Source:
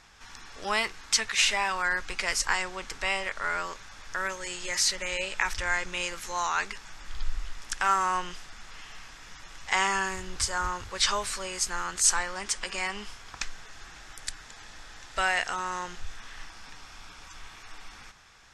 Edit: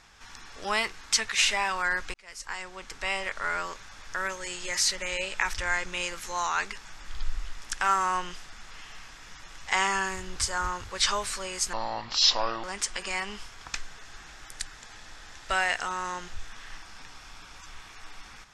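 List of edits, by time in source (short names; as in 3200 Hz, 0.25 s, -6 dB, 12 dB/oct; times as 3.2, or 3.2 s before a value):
2.14–3.28 fade in
11.73–12.31 speed 64%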